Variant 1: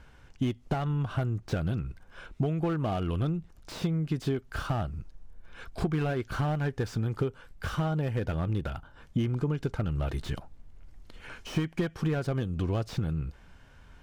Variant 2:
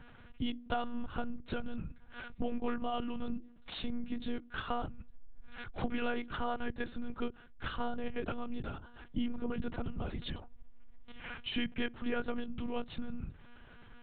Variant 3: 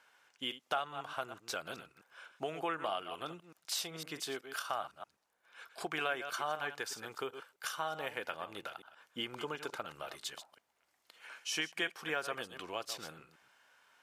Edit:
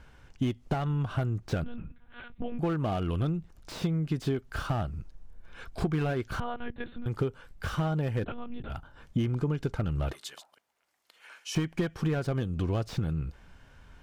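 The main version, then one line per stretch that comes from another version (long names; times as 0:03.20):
1
0:01.64–0:02.59: punch in from 2
0:06.40–0:07.06: punch in from 2
0:08.24–0:08.70: punch in from 2
0:10.13–0:11.55: punch in from 3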